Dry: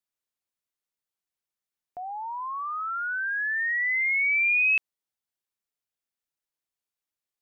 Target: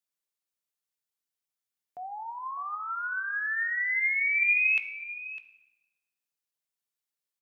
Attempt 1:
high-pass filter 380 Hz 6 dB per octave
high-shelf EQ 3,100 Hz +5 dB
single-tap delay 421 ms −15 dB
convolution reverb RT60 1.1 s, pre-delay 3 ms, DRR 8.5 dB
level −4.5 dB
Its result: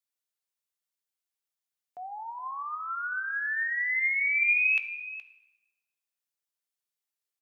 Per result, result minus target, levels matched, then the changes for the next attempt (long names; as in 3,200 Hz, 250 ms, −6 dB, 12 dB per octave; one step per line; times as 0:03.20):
125 Hz band −7.0 dB; echo 183 ms early
change: high-pass filter 120 Hz 6 dB per octave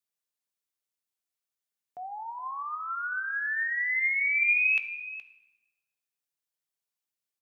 echo 183 ms early
change: single-tap delay 604 ms −15 dB